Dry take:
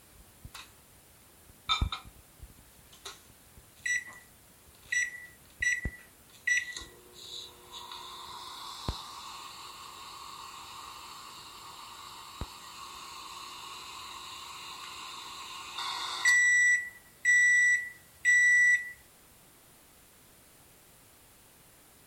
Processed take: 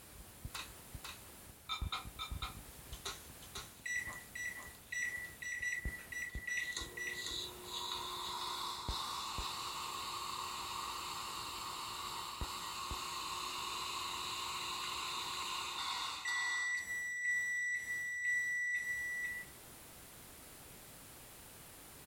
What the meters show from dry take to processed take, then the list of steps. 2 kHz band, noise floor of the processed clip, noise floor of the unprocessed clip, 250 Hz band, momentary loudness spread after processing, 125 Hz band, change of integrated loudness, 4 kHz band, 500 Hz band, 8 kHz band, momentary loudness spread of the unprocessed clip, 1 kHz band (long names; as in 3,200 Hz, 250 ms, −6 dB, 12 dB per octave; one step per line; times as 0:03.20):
−11.5 dB, −56 dBFS, −58 dBFS, −2.0 dB, 17 LU, −5.0 dB, −14.0 dB, −1.5 dB, +0.5 dB, −6.5 dB, 23 LU, 0.0 dB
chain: reversed playback
downward compressor 8 to 1, threshold −39 dBFS, peak gain reduction 18.5 dB
reversed playback
single-tap delay 497 ms −3.5 dB
level +1.5 dB